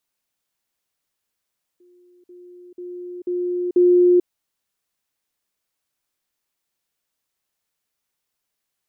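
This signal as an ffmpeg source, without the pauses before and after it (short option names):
-f lavfi -i "aevalsrc='pow(10,(-50.5+10*floor(t/0.49))/20)*sin(2*PI*356*t)*clip(min(mod(t,0.49),0.44-mod(t,0.49))/0.005,0,1)':d=2.45:s=44100"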